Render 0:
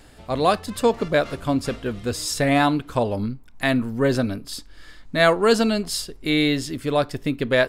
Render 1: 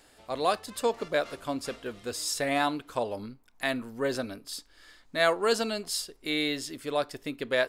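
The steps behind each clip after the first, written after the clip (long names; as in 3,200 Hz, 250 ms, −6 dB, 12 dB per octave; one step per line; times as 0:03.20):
bass and treble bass −12 dB, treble +3 dB
level −7 dB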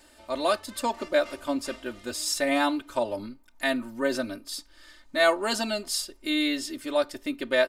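comb filter 3.3 ms, depth 90%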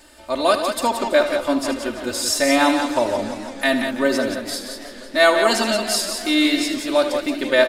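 loudspeakers that aren't time-aligned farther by 26 metres −11 dB, 61 metres −7 dB
feedback echo with a swinging delay time 165 ms, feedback 79%, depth 201 cents, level −15 dB
level +7 dB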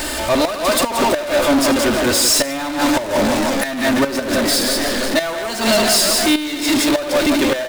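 gate with flip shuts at −8 dBFS, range −32 dB
power curve on the samples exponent 0.35
level −1 dB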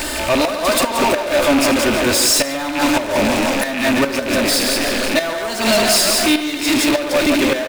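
loose part that buzzes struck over −28 dBFS, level −12 dBFS
far-end echo of a speakerphone 140 ms, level −9 dB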